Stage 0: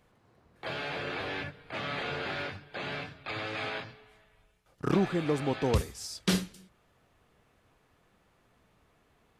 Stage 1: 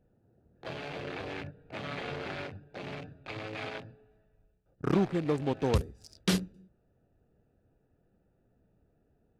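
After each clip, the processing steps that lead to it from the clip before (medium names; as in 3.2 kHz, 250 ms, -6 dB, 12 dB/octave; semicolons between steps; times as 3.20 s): local Wiener filter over 41 samples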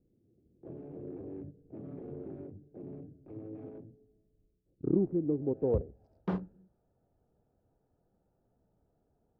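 low-pass sweep 340 Hz -> 1 kHz, 5.31–6.38 s; trim -5.5 dB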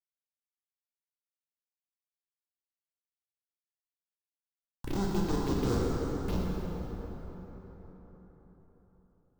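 Schmitt trigger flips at -28 dBFS; touch-sensitive phaser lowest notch 310 Hz, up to 2.8 kHz, full sweep at -36.5 dBFS; plate-style reverb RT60 4.8 s, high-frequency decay 0.5×, DRR -5 dB; trim +7 dB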